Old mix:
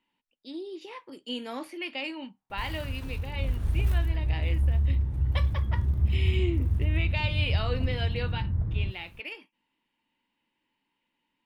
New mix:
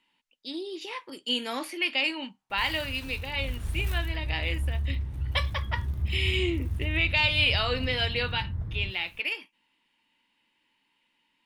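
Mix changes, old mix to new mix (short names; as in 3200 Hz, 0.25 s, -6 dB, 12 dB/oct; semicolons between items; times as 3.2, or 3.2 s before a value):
speech +6.0 dB; master: add tilt shelf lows -5 dB, about 1300 Hz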